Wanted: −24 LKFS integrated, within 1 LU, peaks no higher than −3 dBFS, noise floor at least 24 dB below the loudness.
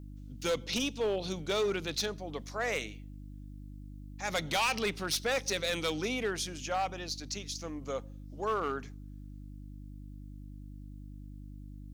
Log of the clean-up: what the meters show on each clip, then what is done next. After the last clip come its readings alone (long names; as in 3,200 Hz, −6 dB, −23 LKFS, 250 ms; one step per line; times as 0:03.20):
share of clipped samples 1.2%; peaks flattened at −25.5 dBFS; mains hum 50 Hz; hum harmonics up to 300 Hz; level of the hum −44 dBFS; integrated loudness −33.5 LKFS; sample peak −25.5 dBFS; target loudness −24.0 LKFS
→ clipped peaks rebuilt −25.5 dBFS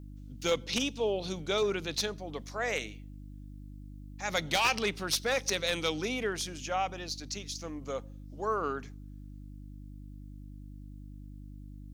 share of clipped samples 0.0%; mains hum 50 Hz; hum harmonics up to 300 Hz; level of the hum −43 dBFS
→ hum removal 50 Hz, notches 6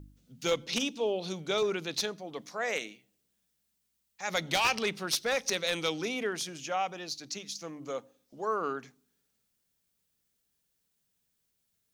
mains hum none found; integrated loudness −32.5 LKFS; sample peak −16.0 dBFS; target loudness −24.0 LKFS
→ level +8.5 dB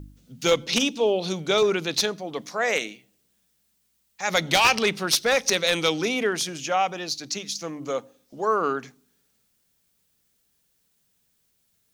integrated loudness −24.0 LKFS; sample peak −7.5 dBFS; background noise floor −70 dBFS